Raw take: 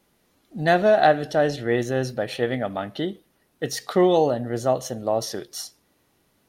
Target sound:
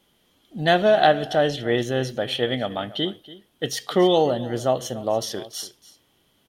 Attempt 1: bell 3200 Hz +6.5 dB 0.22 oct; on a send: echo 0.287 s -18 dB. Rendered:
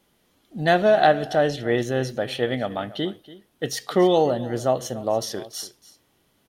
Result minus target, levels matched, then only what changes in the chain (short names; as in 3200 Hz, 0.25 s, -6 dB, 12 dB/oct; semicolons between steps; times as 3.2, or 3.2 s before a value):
4000 Hz band -4.5 dB
change: bell 3200 Hz +15.5 dB 0.22 oct